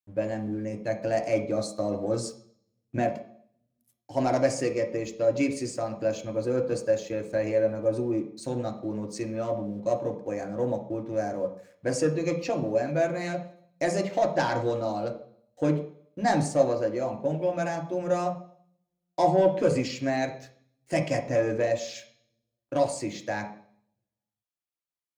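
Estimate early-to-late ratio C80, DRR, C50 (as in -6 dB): 13.0 dB, 2.0 dB, 9.5 dB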